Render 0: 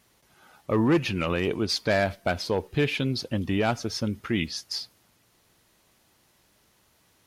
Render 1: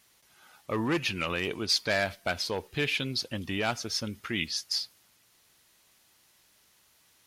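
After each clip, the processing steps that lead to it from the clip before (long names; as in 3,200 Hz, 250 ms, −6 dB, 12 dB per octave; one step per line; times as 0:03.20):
tilt shelving filter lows −5.5 dB, about 1,100 Hz
level −3 dB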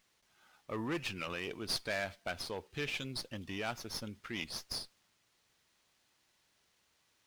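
windowed peak hold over 3 samples
level −8.5 dB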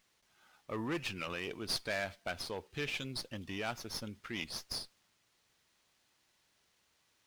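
no processing that can be heard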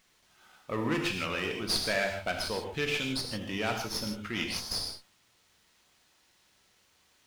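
reverb whose tail is shaped and stops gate 180 ms flat, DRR 2.5 dB
level +5.5 dB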